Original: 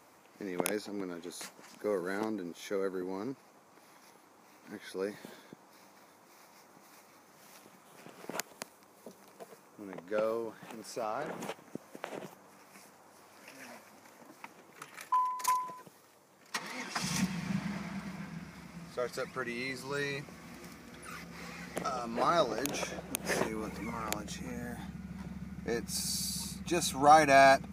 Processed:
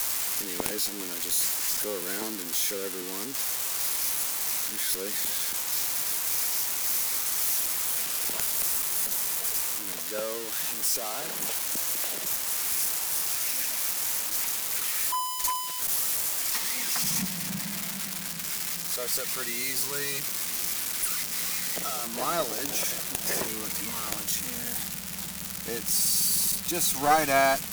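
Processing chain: switching spikes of -18.5 dBFS; added harmonics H 2 -7 dB, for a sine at -8 dBFS; gain -1.5 dB

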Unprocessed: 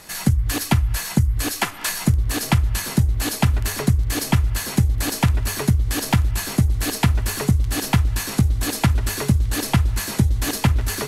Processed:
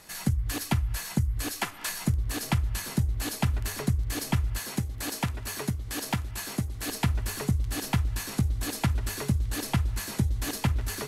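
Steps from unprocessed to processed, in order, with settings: 4.59–6.89 low shelf 110 Hz -10 dB; gain -8.5 dB

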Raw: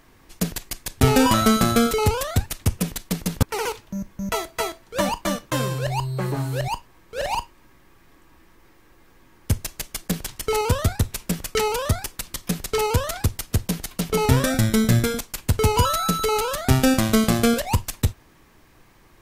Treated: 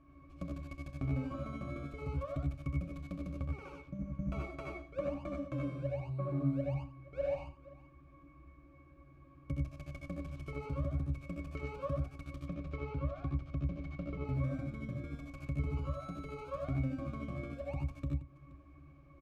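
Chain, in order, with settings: 12.4–14.25 LPF 4100 Hz 12 dB/oct; compressor 12:1, threshold -29 dBFS, peak gain reduction 19 dB; 3.99–4.81 sample leveller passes 1; octave resonator C#, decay 0.13 s; on a send: tapped delay 67/81/95/176/475 ms -7/-3.5/-3.5/-16/-19.5 dB; on the sum: gain +2.5 dB

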